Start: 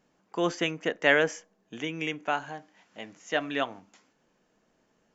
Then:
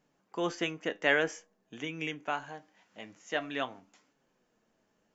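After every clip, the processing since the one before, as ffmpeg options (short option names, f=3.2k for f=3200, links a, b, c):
-af "flanger=delay=6.7:depth=3.2:regen=70:speed=0.5:shape=triangular"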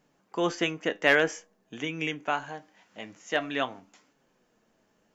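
-af "aeval=exprs='clip(val(0),-1,0.126)':c=same,volume=5dB"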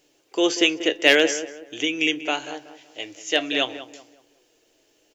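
-filter_complex "[0:a]firequalizer=gain_entry='entry(130,0);entry(190,-18);entry(300,10);entry(1100,-3);entry(2800,14)':delay=0.05:min_phase=1,asplit=2[a][b];[b]adelay=188,lowpass=f=1.8k:p=1,volume=-12dB,asplit=2[c][d];[d]adelay=188,lowpass=f=1.8k:p=1,volume=0.36,asplit=2[e][f];[f]adelay=188,lowpass=f=1.8k:p=1,volume=0.36,asplit=2[g][h];[h]adelay=188,lowpass=f=1.8k:p=1,volume=0.36[i];[a][c][e][g][i]amix=inputs=5:normalize=0,volume=-1dB"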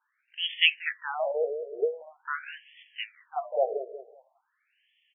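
-af "highpass=f=390:t=q:w=3.5,afftfilt=real='re*between(b*sr/1024,500*pow(2500/500,0.5+0.5*sin(2*PI*0.45*pts/sr))/1.41,500*pow(2500/500,0.5+0.5*sin(2*PI*0.45*pts/sr))*1.41)':imag='im*between(b*sr/1024,500*pow(2500/500,0.5+0.5*sin(2*PI*0.45*pts/sr))/1.41,500*pow(2500/500,0.5+0.5*sin(2*PI*0.45*pts/sr))*1.41)':win_size=1024:overlap=0.75"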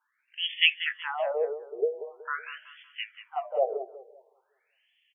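-af "aecho=1:1:187|374|561:0.224|0.0784|0.0274"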